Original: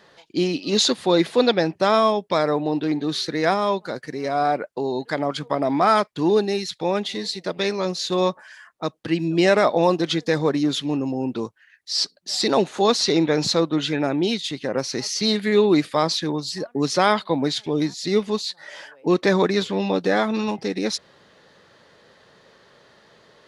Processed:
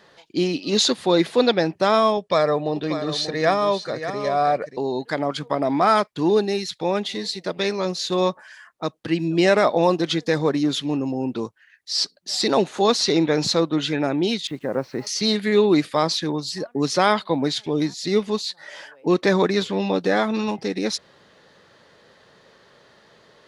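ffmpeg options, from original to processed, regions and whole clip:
-filter_complex "[0:a]asettb=1/sr,asplit=3[a][b][c];[a]atrim=end=2.174[d];[b]atrim=start=2.17:end=4.77,asetpts=PTS-STARTPTS,afade=t=in:d=0.004:c=qsin,afade=t=out:st=2.596:d=0.004:c=qsin,lowpass=f=9.7k:w=0.5412,lowpass=f=9.7k:w=1.3066,aecho=1:1:1.7:0.4,atrim=end_sample=114660,aecho=1:1:587:0.299,atrim=end_sample=114660[e];[c]atrim=start=4.766[f];[d][e]acrossfade=d=0.004:c1=hsin:c2=qsin[g];[g][f]acrossfade=d=0.004:c1=qsin:c2=hsin,asettb=1/sr,asplit=3[h][i][j];[h]atrim=end=14.474[k];[i]atrim=start=14.47:end=15.07,asetpts=PTS-STARTPTS,afade=t=in:d=0.004:c=qsin,afade=t=out:st=0.596:d=0.004:c=qsin,lowpass=1.6k,acrusher=bits=8:mix=0:aa=0.5[l];[j]atrim=start=15.066[m];[k][l]acrossfade=d=0.004:c1=hsin:c2=qsin[n];[n][m]acrossfade=d=0.004:c1=qsin:c2=hsin"

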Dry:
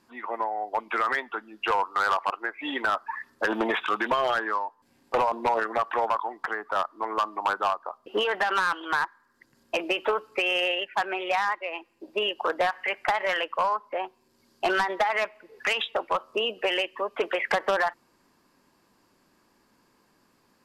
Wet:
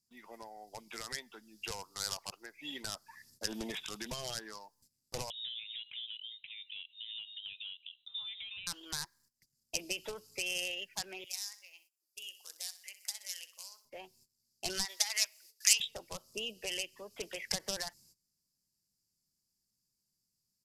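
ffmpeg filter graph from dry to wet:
-filter_complex "[0:a]asettb=1/sr,asplit=3[a][b][c];[a]atrim=end=5.304[d];[b]atrim=start=5.3:end=8.67,asetpts=PTS-STARTPTS,afade=t=in:d=0.004:c=qsin,afade=t=out:st=3.366:d=0.004:c=qsin,acompressor=threshold=-34dB:ratio=4:attack=3.2:release=140:knee=1:detection=peak,lowpass=f=3.4k:t=q:w=0.5098,lowpass=f=3.4k:t=q:w=0.6013,lowpass=f=3.4k:t=q:w=0.9,lowpass=f=3.4k:t=q:w=2.563,afreqshift=-4000[e];[c]atrim=start=8.666[f];[d][e]acrossfade=d=0.004:c1=hsin:c2=qsin[g];[g][f]acrossfade=d=0.004:c1=qsin:c2=hsin,asettb=1/sr,asplit=3[h][i][j];[h]atrim=end=11.244[k];[i]atrim=start=11.24:end=13.85,asetpts=PTS-STARTPTS,afade=t=in:d=0.004:c=qsin,afade=t=out:st=2.606:d=0.004:c=qsin,aderivative,aecho=1:1:63|126|189|252:0.2|0.0898|0.0404|0.0182,atrim=end_sample=115101[l];[j]atrim=start=13.846[m];[k][l]acrossfade=d=0.004:c1=hsin:c2=qsin[n];[n][m]acrossfade=d=0.004:c1=qsin:c2=hsin,asettb=1/sr,asplit=3[o][p][q];[o]atrim=end=14.854[r];[p]atrim=start=14.85:end=15.8,asetpts=PTS-STARTPTS,afade=t=in:d=0.004:c=qsin,afade=t=out:st=0.946:d=0.004:c=qsin,highpass=920,highshelf=f=2.5k:g=9.5[s];[q]atrim=start=15.796[t];[r][s]acrossfade=d=0.004:c1=hsin:c2=qsin[u];[u][t]acrossfade=d=0.004:c1=qsin:c2=hsin,agate=range=-19dB:threshold=-54dB:ratio=16:detection=peak,firequalizer=gain_entry='entry(150,0);entry(270,-16);entry(1200,-28);entry(2000,-17);entry(3200,-10);entry(5100,9)':delay=0.05:min_phase=1,volume=1.5dB"

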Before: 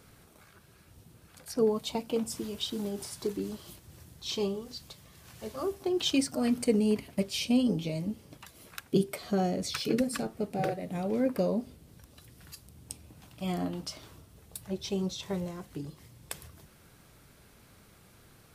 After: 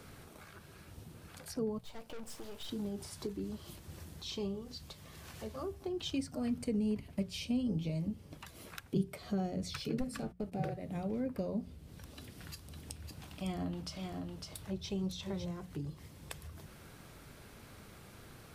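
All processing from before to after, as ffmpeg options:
-filter_complex "[0:a]asettb=1/sr,asplit=3[a][b][c];[a]atrim=end=1.784[d];[b]atrim=start=1.78:end=2.69,asetpts=PTS-STARTPTS,afade=t=in:d=0.004:c=qsin,afade=t=out:st=0.906:d=0.004:c=qsin,lowshelf=f=370:t=q:w=1.5:g=-6.5,aeval=exprs='(tanh(141*val(0)+0.8)-tanh(0.8))/141':c=same[e];[c]atrim=start=2.686[f];[d][e]acrossfade=d=0.004:c1=hsin:c2=qsin[g];[g][f]acrossfade=d=0.004:c1=qsin:c2=hsin,asettb=1/sr,asplit=3[h][i][j];[h]atrim=end=9.974[k];[i]atrim=start=9.97:end=10.52,asetpts=PTS-STARTPTS,afade=t=in:d=0.004:c=qsin,afade=t=out:st=0.546:d=0.004:c=qsin,bandreject=f=118.3:t=h:w=4,bandreject=f=236.6:t=h:w=4,bandreject=f=354.9:t=h:w=4,bandreject=f=473.2:t=h:w=4,bandreject=f=591.5:t=h:w=4,bandreject=f=709.8:t=h:w=4,bandreject=f=828.1:t=h:w=4,bandreject=f=946.4:t=h:w=4,bandreject=f=1.0647k:t=h:w=4,bandreject=f=1.183k:t=h:w=4,bandreject=f=1.3013k:t=h:w=4,bandreject=f=1.4196k:t=h:w=4,bandreject=f=1.5379k:t=h:w=4,bandreject=f=1.6562k:t=h:w=4,bandreject=f=1.7745k:t=h:w=4,bandreject=f=1.8928k:t=h:w=4,bandreject=f=2.0111k:t=h:w=4,bandreject=f=2.1294k:t=h:w=4,bandreject=f=2.2477k:t=h:w=4,bandreject=f=2.366k:t=h:w=4,bandreject=f=2.4843k:t=h:w=4,bandreject=f=2.6026k:t=h:w=4,bandreject=f=2.7209k:t=h:w=4,bandreject=f=2.8392k:t=h:w=4,bandreject=f=2.9575k:t=h:w=4,bandreject=f=3.0758k:t=h:w=4,bandreject=f=3.1941k:t=h:w=4,bandreject=f=3.3124k:t=h:w=4,bandreject=f=3.4307k:t=h:w=4,bandreject=f=3.549k:t=h:w=4,bandreject=f=3.6673k:t=h:w=4,bandreject=f=3.7856k:t=h:w=4,bandreject=f=3.9039k:t=h:w=4,bandreject=f=4.0222k:t=h:w=4,agate=range=-23dB:threshold=-44dB:ratio=16:release=100:detection=peak,aeval=exprs='clip(val(0),-1,0.0473)':c=same[l];[j]atrim=start=10.516[m];[k][l]acrossfade=d=0.004:c1=hsin:c2=qsin[n];[n][m]acrossfade=d=0.004:c1=qsin:c2=hsin,asettb=1/sr,asplit=3[o][p][q];[o]atrim=end=11.634[r];[p]atrim=start=11.63:end=15.46,asetpts=PTS-STARTPTS,afade=t=in:d=0.004:c=qsin,afade=t=out:st=3.826:d=0.004:c=qsin,equalizer=f=3.3k:t=o:w=2.1:g=2.5,aecho=1:1:555:0.501,atrim=end_sample=168903[s];[q]atrim=start=15.456[t];[r][s]acrossfade=d=0.004:c1=hsin:c2=qsin[u];[u][t]acrossfade=d=0.004:c1=qsin:c2=hsin,highshelf=f=5.2k:g=-5,bandreject=f=60:t=h:w=6,bandreject=f=120:t=h:w=6,bandreject=f=180:t=h:w=6,acrossover=split=140[v][w];[w]acompressor=threshold=-55dB:ratio=2[x];[v][x]amix=inputs=2:normalize=0,volume=5dB"

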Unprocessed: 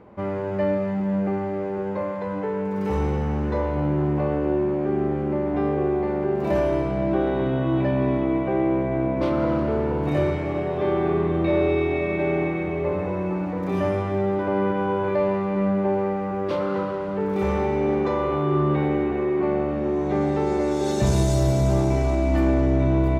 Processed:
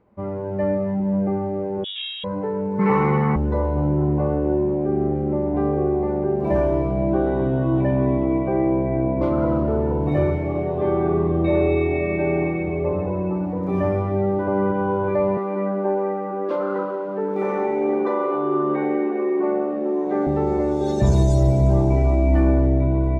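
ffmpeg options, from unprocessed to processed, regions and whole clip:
-filter_complex "[0:a]asettb=1/sr,asplit=3[a][b][c];[a]atrim=end=1.844[d];[b]atrim=start=1.84:end=2.24,asetpts=PTS-STARTPTS,afade=t=in:d=0.004:c=qsin,afade=t=out:st=0.396:d=0.004:c=qsin,equalizer=f=140:t=o:w=1.4:g=-10.5,aeval=exprs='clip(val(0),-1,0.0112)':c=same,lowpass=f=3.2k:t=q:w=0.5098,lowpass=f=3.2k:t=q:w=0.6013,lowpass=f=3.2k:t=q:w=0.9,lowpass=f=3.2k:t=q:w=2.563,afreqshift=-3800[e];[c]atrim=start=2.236[f];[d][e]acrossfade=d=0.004:c1=hsin:c2=qsin[g];[g][f]acrossfade=d=0.004:c1=qsin:c2=hsin,asettb=1/sr,asplit=3[h][i][j];[h]atrim=end=2.794[k];[i]atrim=start=2.79:end=3.36,asetpts=PTS-STARTPTS,afade=t=in:d=0.004:c=qsin,afade=t=out:st=0.566:d=0.004:c=qsin,acontrast=51,highpass=f=150:w=0.5412,highpass=f=150:w=1.3066,equalizer=f=160:t=q:w=4:g=5,equalizer=f=300:t=q:w=4:g=-7,equalizer=f=610:t=q:w=4:g=-7,equalizer=f=1.1k:t=q:w=4:g=10,equalizer=f=2.1k:t=q:w=4:g=9,lowpass=f=5k:w=0.5412,lowpass=f=5k:w=1.3066[l];[j]atrim=start=3.356[m];[k][l]acrossfade=d=0.004:c1=hsin:c2=qsin[n];[n][m]acrossfade=d=0.004:c1=qsin:c2=hsin,asettb=1/sr,asplit=3[o][p][q];[o]atrim=end=15.374[r];[p]atrim=start=15.37:end=20.27,asetpts=PTS-STARTPTS,afade=t=in:d=0.004:c=qsin,afade=t=out:st=4.896:d=0.004:c=qsin,highpass=f=230:w=0.5412,highpass=f=230:w=1.3066,equalizer=f=1.6k:t=o:w=0.59:g=3[s];[q]atrim=start=20.266[t];[r][s]acrossfade=d=0.004:c1=hsin:c2=qsin[u];[u][t]acrossfade=d=0.004:c1=qsin:c2=hsin,afftdn=nr=12:nf=-31,lowshelf=f=70:g=8,dynaudnorm=f=140:g=9:m=3dB,volume=-1.5dB"

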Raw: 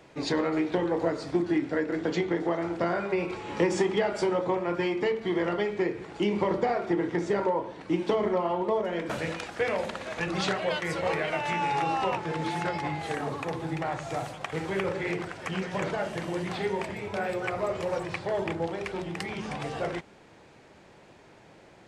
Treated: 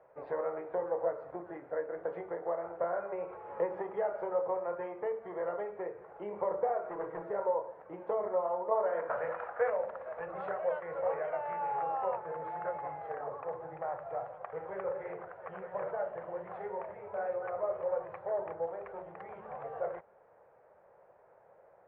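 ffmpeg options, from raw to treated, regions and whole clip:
-filter_complex "[0:a]asettb=1/sr,asplit=3[a][b][c];[a]atrim=end=6.844[d];[b]atrim=start=6.84:end=7.31,asetpts=PTS-STARTPTS,afade=t=in:d=0.004:c=qsin,afade=t=out:st=0.466:d=0.004:c=qsin,bandreject=f=50:t=h:w=6,bandreject=f=100:t=h:w=6,bandreject=f=150:t=h:w=6,bandreject=f=200:t=h:w=6,bandreject=f=250:t=h:w=6,bandreject=f=300:t=h:w=6,bandreject=f=350:t=h:w=6,aecho=1:1:6.3:1,atrim=end_sample=20727,asoftclip=type=hard:threshold=-23dB[e];[c]atrim=start=7.306[f];[d][e]acrossfade=d=0.004:c1=hsin:c2=qsin[g];[g][f]acrossfade=d=0.004:c1=qsin:c2=hsin,asettb=1/sr,asplit=3[h][i][j];[h]atrim=end=8.714[k];[i]atrim=start=8.71:end=9.7,asetpts=PTS-STARTPTS,afade=t=in:d=0.004:c=qsin,afade=t=out:st=0.986:d=0.004:c=qsin,equalizer=f=1.3k:t=o:w=1.9:g=9.5,bandreject=f=89.34:t=h:w=4,bandreject=f=178.68:t=h:w=4,bandreject=f=268.02:t=h:w=4,bandreject=f=357.36:t=h:w=4,bandreject=f=446.7:t=h:w=4,bandreject=f=536.04:t=h:w=4,bandreject=f=625.38:t=h:w=4,bandreject=f=714.72:t=h:w=4,bandreject=f=804.06:t=h:w=4,bandreject=f=893.4:t=h:w=4,bandreject=f=982.74:t=h:w=4,bandreject=f=1.07208k:t=h:w=4,bandreject=f=1.16142k:t=h:w=4,bandreject=f=1.25076k:t=h:w=4,bandreject=f=1.3401k:t=h:w=4,bandreject=f=1.42944k:t=h:w=4,bandreject=f=1.51878k:t=h:w=4,bandreject=f=1.60812k:t=h:w=4,bandreject=f=1.69746k:t=h:w=4,bandreject=f=1.7868k:t=h:w=4,bandreject=f=1.87614k:t=h:w=4,bandreject=f=1.96548k:t=h:w=4,bandreject=f=2.05482k:t=h:w=4,bandreject=f=2.14416k:t=h:w=4,bandreject=f=2.2335k:t=h:w=4,bandreject=f=2.32284k:t=h:w=4,bandreject=f=2.41218k:t=h:w=4,bandreject=f=2.50152k:t=h:w=4,bandreject=f=2.59086k:t=h:w=4,bandreject=f=2.6802k:t=h:w=4,bandreject=f=2.76954k:t=h:w=4[l];[j]atrim=start=9.696[m];[k][l]acrossfade=d=0.004:c1=hsin:c2=qsin[n];[n][m]acrossfade=d=0.004:c1=qsin:c2=hsin,lowpass=f=1.5k:w=0.5412,lowpass=f=1.5k:w=1.3066,lowshelf=f=390:t=q:w=3:g=-10,volume=-8.5dB"

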